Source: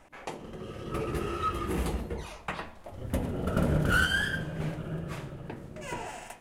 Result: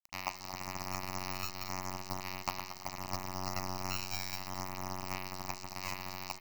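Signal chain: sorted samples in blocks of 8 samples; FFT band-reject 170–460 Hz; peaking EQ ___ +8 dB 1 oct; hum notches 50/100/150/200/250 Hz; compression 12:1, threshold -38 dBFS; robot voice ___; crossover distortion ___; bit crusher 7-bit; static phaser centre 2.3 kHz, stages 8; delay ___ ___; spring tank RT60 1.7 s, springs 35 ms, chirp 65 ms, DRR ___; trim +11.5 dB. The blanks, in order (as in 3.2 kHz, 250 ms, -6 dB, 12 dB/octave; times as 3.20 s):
950 Hz, 92.8 Hz, -44.5 dBFS, 226 ms, -11 dB, 12 dB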